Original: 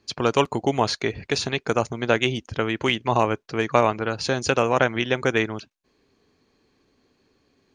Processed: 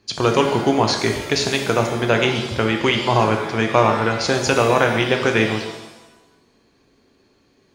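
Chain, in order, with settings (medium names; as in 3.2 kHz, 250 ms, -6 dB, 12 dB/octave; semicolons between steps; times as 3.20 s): in parallel at 0 dB: peak limiter -11.5 dBFS, peak gain reduction 8.5 dB; on the sum: pitch-shifted reverb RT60 1 s, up +7 st, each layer -8 dB, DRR 3.5 dB; trim -2 dB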